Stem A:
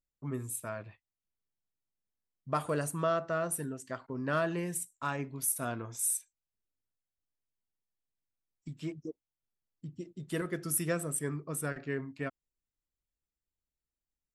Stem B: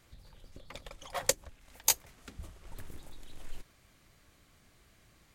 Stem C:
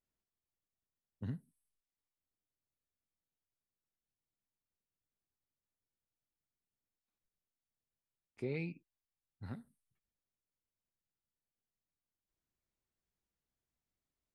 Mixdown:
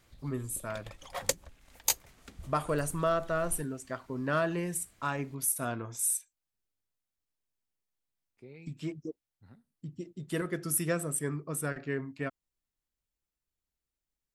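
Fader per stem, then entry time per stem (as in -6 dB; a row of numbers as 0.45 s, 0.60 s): +1.5 dB, -1.5 dB, -11.5 dB; 0.00 s, 0.00 s, 0.00 s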